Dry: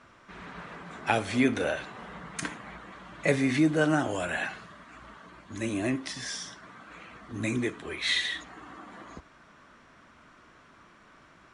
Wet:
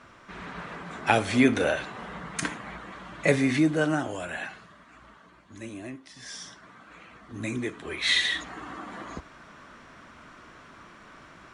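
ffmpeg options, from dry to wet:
-af "volume=24dB,afade=t=out:st=3.06:d=1.12:silence=0.421697,afade=t=out:st=5.05:d=1.04:silence=0.316228,afade=t=in:st=6.09:d=0.35:silence=0.266073,afade=t=in:st=7.63:d=0.87:silence=0.375837"

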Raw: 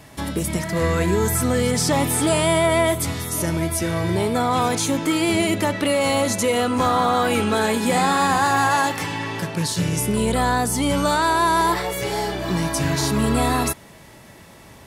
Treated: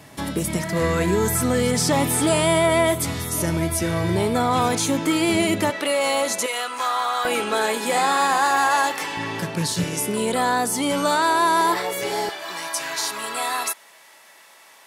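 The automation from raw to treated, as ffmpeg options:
-af "asetnsamples=n=441:p=0,asendcmd='3.13 highpass f 43;4.73 highpass f 100;5.7 highpass f 430;6.46 highpass f 1000;7.25 highpass f 390;9.17 highpass f 120;9.84 highpass f 250;12.29 highpass f 880',highpass=96"

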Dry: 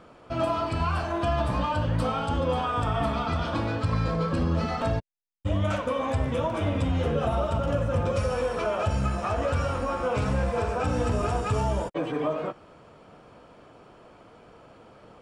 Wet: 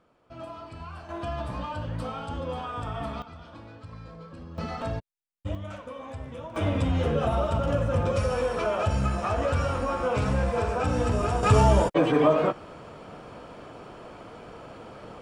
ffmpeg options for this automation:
-af "asetnsamples=n=441:p=0,asendcmd='1.09 volume volume -7dB;3.22 volume volume -17.5dB;4.58 volume volume -5dB;5.55 volume volume -12dB;6.56 volume volume 0.5dB;11.43 volume volume 7.5dB',volume=-14dB"

